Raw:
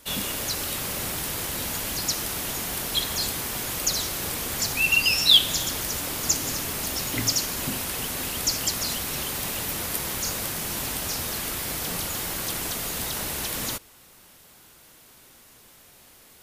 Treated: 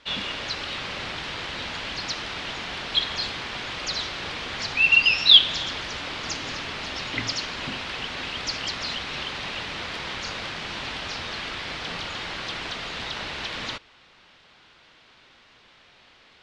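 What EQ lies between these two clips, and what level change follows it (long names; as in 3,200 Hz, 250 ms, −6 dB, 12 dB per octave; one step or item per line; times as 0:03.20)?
low-pass filter 4,000 Hz 24 dB per octave
tilt shelving filter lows −5 dB, about 770 Hz
0.0 dB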